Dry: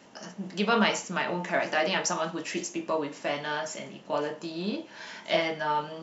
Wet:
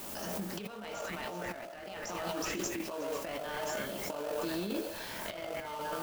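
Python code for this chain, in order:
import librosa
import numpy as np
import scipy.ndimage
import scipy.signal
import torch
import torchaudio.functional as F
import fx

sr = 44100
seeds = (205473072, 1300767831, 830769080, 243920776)

p1 = fx.dmg_noise_colour(x, sr, seeds[0], colour='blue', level_db=-47.0)
p2 = p1 + fx.echo_stepped(p1, sr, ms=123, hz=630.0, octaves=1.4, feedback_pct=70, wet_db=-1.0, dry=0)
p3 = fx.over_compress(p2, sr, threshold_db=-33.0, ratio=-0.5)
p4 = scipy.signal.sosfilt(scipy.signal.butter(2, 180.0, 'highpass', fs=sr, output='sos'), p3)
p5 = fx.sample_hold(p4, sr, seeds[1], rate_hz=2000.0, jitter_pct=20)
p6 = p4 + (p5 * librosa.db_to_amplitude(-6.0))
p7 = fx.pre_swell(p6, sr, db_per_s=22.0)
y = p7 * librosa.db_to_amplitude(-8.0)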